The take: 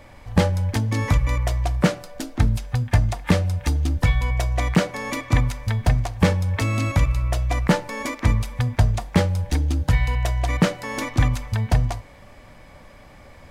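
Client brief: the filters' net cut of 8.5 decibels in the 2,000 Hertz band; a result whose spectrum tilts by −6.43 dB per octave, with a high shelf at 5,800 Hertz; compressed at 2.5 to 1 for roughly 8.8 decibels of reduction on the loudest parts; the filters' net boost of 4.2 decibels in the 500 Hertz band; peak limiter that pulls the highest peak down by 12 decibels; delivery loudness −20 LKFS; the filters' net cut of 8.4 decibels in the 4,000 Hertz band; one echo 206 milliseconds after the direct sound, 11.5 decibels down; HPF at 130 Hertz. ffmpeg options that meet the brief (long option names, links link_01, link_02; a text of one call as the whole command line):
ffmpeg -i in.wav -af "highpass=130,equalizer=frequency=500:width_type=o:gain=5.5,equalizer=frequency=2000:width_type=o:gain=-8.5,equalizer=frequency=4000:width_type=o:gain=-6.5,highshelf=frequency=5800:gain=-4.5,acompressor=threshold=-26dB:ratio=2.5,alimiter=limit=-21.5dB:level=0:latency=1,aecho=1:1:206:0.266,volume=12.5dB" out.wav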